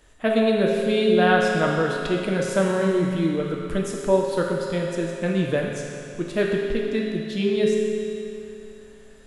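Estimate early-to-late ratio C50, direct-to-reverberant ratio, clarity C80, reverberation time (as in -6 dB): 0.5 dB, -2.0 dB, 1.5 dB, 2.7 s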